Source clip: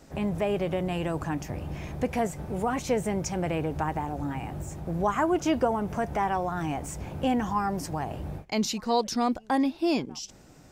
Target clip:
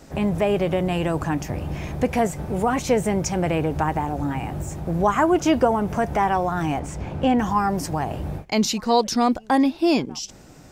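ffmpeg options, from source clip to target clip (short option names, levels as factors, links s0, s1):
-filter_complex "[0:a]asettb=1/sr,asplit=3[s0][s1][s2];[s0]atrim=end=6.794[s3];[s1]atrim=start=6.79:end=7.39,asetpts=PTS-STARTPTS,afade=t=in:d=0.004:c=qsin,afade=t=out:st=0.596:d=0.004:c=qsin,equalizer=f=14000:w=0.46:g=-14.5[s4];[s2]atrim=start=7.386[s5];[s3][s4]acrossfade=d=0.004:c1=hsin:c2=qsin[s6];[s6][s5]acrossfade=d=0.004:c1=qsin:c2=hsin,volume=2.11"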